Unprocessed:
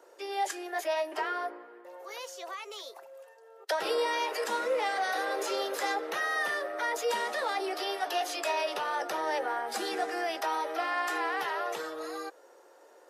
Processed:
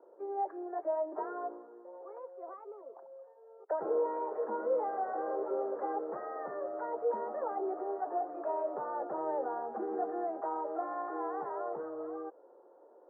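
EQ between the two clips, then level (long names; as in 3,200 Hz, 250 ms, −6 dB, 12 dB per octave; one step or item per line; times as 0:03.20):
Bessel low-pass filter 710 Hz, order 8
high-frequency loss of the air 160 metres
+1.0 dB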